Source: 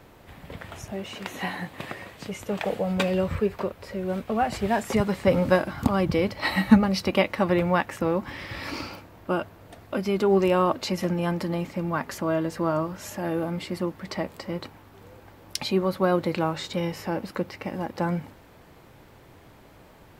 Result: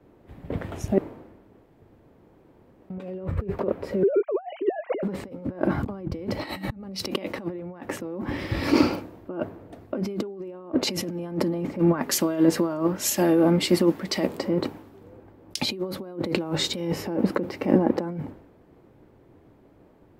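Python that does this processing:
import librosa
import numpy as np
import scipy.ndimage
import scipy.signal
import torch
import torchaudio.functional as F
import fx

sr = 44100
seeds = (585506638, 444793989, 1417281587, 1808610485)

y = fx.sine_speech(x, sr, at=(4.03, 5.03))
y = fx.tilt_shelf(y, sr, db=-5.0, hz=1500.0, at=(11.79, 14.27))
y = fx.edit(y, sr, fx.room_tone_fill(start_s=0.98, length_s=1.92), tone=tone)
y = fx.over_compress(y, sr, threshold_db=-33.0, ratio=-1.0)
y = fx.peak_eq(y, sr, hz=320.0, db=14.0, octaves=2.1)
y = fx.band_widen(y, sr, depth_pct=100)
y = y * 10.0 ** (-4.0 / 20.0)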